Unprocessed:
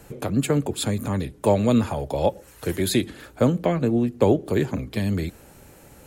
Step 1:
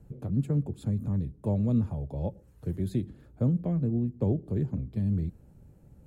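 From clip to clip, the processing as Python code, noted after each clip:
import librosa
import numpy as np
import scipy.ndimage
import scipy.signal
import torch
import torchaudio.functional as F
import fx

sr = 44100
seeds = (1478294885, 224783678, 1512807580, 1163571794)

y = fx.curve_eq(x, sr, hz=(170.0, 280.0, 2200.0), db=(0, -9, -25))
y = y * 10.0 ** (-1.5 / 20.0)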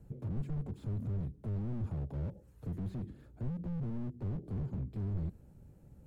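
y = fx.slew_limit(x, sr, full_power_hz=3.7)
y = y * 10.0 ** (-2.5 / 20.0)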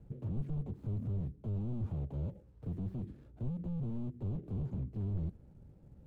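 y = scipy.ndimage.median_filter(x, 25, mode='constant')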